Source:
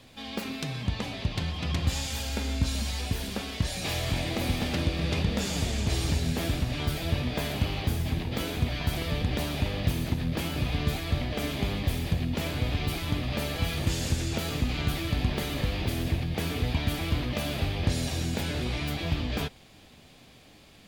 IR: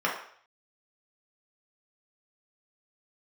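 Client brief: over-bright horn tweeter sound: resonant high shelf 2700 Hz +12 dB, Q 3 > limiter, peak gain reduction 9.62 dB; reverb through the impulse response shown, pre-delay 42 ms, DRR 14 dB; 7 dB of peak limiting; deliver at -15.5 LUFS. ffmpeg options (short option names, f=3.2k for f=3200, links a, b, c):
-filter_complex "[0:a]alimiter=limit=-21dB:level=0:latency=1,asplit=2[a][b];[1:a]atrim=start_sample=2205,adelay=42[c];[b][c]afir=irnorm=-1:irlink=0,volume=-26.5dB[d];[a][d]amix=inputs=2:normalize=0,highshelf=f=2.7k:t=q:w=3:g=12,volume=9dB,alimiter=limit=-8dB:level=0:latency=1"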